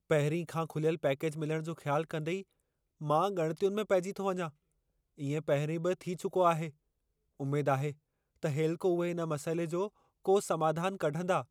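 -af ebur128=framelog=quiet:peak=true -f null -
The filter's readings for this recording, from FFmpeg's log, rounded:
Integrated loudness:
  I:         -33.0 LUFS
  Threshold: -43.3 LUFS
Loudness range:
  LRA:         1.6 LU
  Threshold: -53.8 LUFS
  LRA low:   -34.5 LUFS
  LRA high:  -33.0 LUFS
True peak:
  Peak:      -14.7 dBFS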